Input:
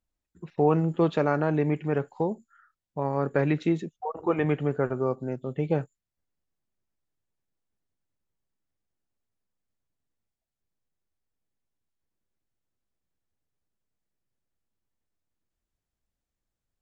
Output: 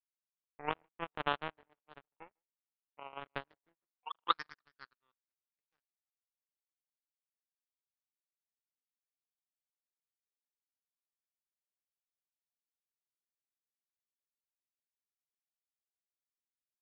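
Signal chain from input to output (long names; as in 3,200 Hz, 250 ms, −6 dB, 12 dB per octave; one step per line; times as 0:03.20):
flat-topped bell 1,300 Hz +14 dB 1.2 octaves
delay that swaps between a low-pass and a high-pass 151 ms, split 1,000 Hz, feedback 66%, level −13 dB
band-pass filter sweep 720 Hz → 2,700 Hz, 0:03.64–0:05.08
power curve on the samples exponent 3
level −1.5 dB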